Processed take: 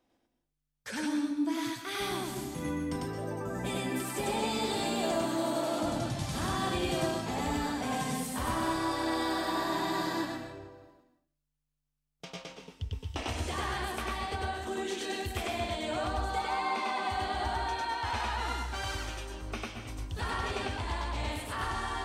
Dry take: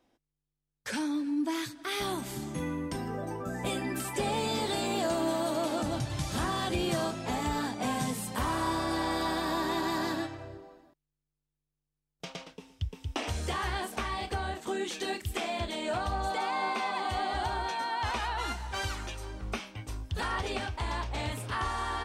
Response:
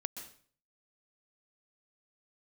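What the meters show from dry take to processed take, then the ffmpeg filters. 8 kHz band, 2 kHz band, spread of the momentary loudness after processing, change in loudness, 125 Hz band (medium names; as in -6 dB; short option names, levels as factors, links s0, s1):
-0.5 dB, -0.5 dB, 9 LU, -0.5 dB, -1.0 dB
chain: -filter_complex "[0:a]asplit=2[s0][s1];[1:a]atrim=start_sample=2205,adelay=99[s2];[s1][s2]afir=irnorm=-1:irlink=0,volume=1.19[s3];[s0][s3]amix=inputs=2:normalize=0,volume=0.631"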